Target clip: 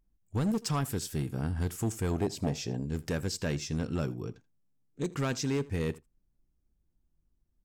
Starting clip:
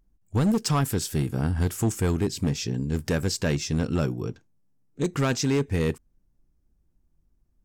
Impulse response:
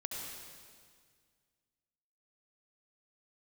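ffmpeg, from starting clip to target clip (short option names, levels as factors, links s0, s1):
-filter_complex "[0:a]asettb=1/sr,asplit=3[s0][s1][s2];[s0]atrim=end=2.114[s3];[s1]atrim=start=2.11:end=2.86,asetpts=PTS-STARTPTS,afade=t=in:d=0.004:c=qsin,afade=t=out:st=0.746:d=0.004:c=qsin,equalizer=f=680:t=o:w=0.81:g=14.5[s4];[s2]atrim=start=2.856[s5];[s3][s4]acrossfade=d=0.004:c1=hsin:c2=qsin[s6];[s6][s5]acrossfade=d=0.004:c1=qsin:c2=hsin,aecho=1:1:81:0.0841,volume=0.447"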